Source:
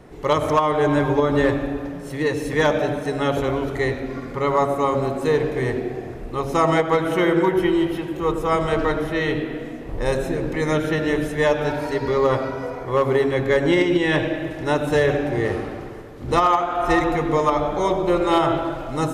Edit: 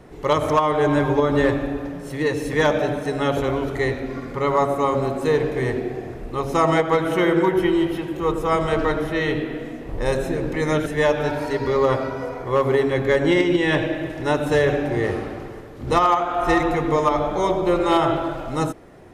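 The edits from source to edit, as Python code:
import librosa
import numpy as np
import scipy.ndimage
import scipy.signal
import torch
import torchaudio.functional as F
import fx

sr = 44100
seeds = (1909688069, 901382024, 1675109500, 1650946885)

y = fx.edit(x, sr, fx.cut(start_s=10.86, length_s=0.41), tone=tone)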